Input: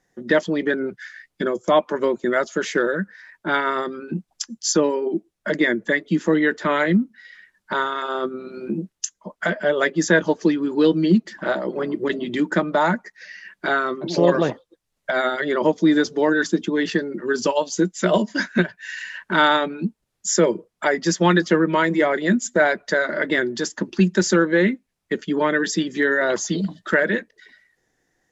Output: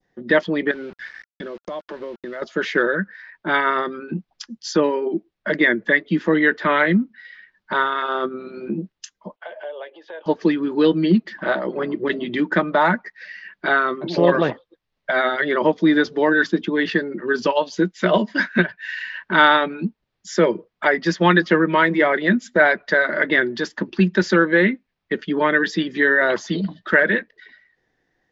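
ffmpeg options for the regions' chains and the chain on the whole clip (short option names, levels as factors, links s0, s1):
-filter_complex "[0:a]asettb=1/sr,asplit=3[s0][s1][s2];[s0]atrim=end=0.714[s3];[s1]atrim=start=0.71:end=2.42,asetpts=PTS-STARTPTS,afade=t=in:d=0.004:c=qsin,afade=t=out:st=1.706:d=0.004:c=qsin,equalizer=f=550:t=o:w=0.24:g=5,acompressor=threshold=0.0316:ratio=4:attack=3.2:release=140:knee=1:detection=peak,aeval=exprs='val(0)*gte(abs(val(0)),0.00794)':c=same[s4];[s2]atrim=start=2.416[s5];[s3][s4]acrossfade=d=0.004:c1=hsin:c2=qsin[s6];[s6][s5]acrossfade=d=0.004:c1=qsin:c2=hsin,asettb=1/sr,asplit=3[s7][s8][s9];[s7]atrim=end=9.364[s10];[s8]atrim=start=9.36:end=10.26,asetpts=PTS-STARTPTS,afade=t=in:d=0.004:c=qsin,afade=t=out:st=0.896:d=0.004:c=qsin,acompressor=threshold=0.0316:ratio=5:attack=3.2:release=140:knee=1:detection=peak,highpass=f=490:w=0.5412,highpass=f=490:w=1.3066,equalizer=f=520:t=q:w=4:g=4,equalizer=f=820:t=q:w=4:g=6,equalizer=f=1300:t=q:w=4:g=-8,equalizer=f=1900:t=q:w=4:g=-9,equalizer=f=2900:t=q:w=4:g=4,lowpass=f=3400:w=0.5412,lowpass=f=3400:w=1.3066[s11];[s9]atrim=start=10.256[s12];[s10][s11]acrossfade=d=0.004:c1=hsin:c2=qsin[s13];[s13][s12]acrossfade=d=0.004:c1=qsin:c2=hsin,bandreject=f=1400:w=29,adynamicequalizer=threshold=0.0282:dfrequency=1700:dqfactor=0.77:tfrequency=1700:tqfactor=0.77:attack=5:release=100:ratio=0.375:range=2.5:mode=boostabove:tftype=bell,lowpass=f=4600:w=0.5412,lowpass=f=4600:w=1.3066"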